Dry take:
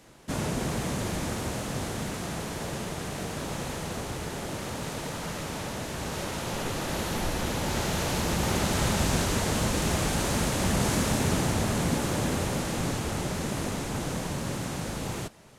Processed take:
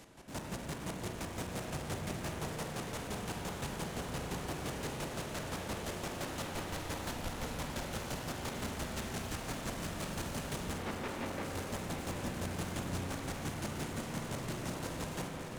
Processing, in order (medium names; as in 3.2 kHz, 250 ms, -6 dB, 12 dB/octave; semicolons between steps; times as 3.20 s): 10.78–11.45 s: elliptic band-pass 220–2300 Hz; peak limiter -24 dBFS, peak gain reduction 11 dB; hard clipper -37.5 dBFS, distortion -7 dB; square tremolo 5.8 Hz, depth 65%, duty 25%; on a send: echo whose repeats swap between lows and highs 541 ms, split 1.5 kHz, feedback 87%, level -7.5 dB; on the sum: spring tank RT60 3.6 s, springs 33/44 ms, chirp 70 ms, DRR 2 dB; trim +1 dB